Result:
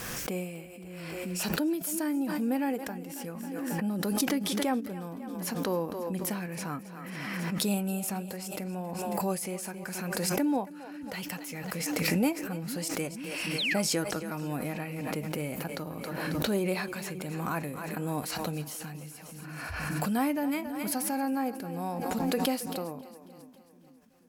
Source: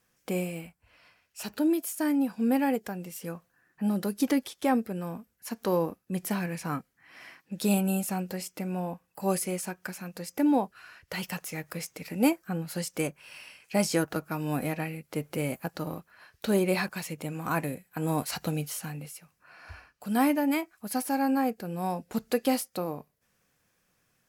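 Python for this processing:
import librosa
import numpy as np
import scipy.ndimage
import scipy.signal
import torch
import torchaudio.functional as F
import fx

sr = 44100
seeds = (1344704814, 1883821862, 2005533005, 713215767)

y = fx.spec_paint(x, sr, seeds[0], shape='fall', start_s=13.58, length_s=0.22, low_hz=1100.0, high_hz=4500.0, level_db=-39.0)
y = fx.echo_split(y, sr, split_hz=310.0, low_ms=477, high_ms=272, feedback_pct=52, wet_db=-15)
y = fx.pre_swell(y, sr, db_per_s=22.0)
y = y * 10.0 ** (-4.5 / 20.0)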